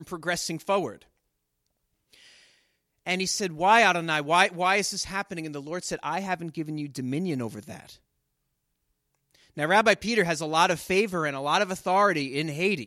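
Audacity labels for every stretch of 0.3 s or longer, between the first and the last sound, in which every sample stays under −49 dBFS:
1.030000	2.130000	silence
2.520000	3.060000	silence
7.960000	9.350000	silence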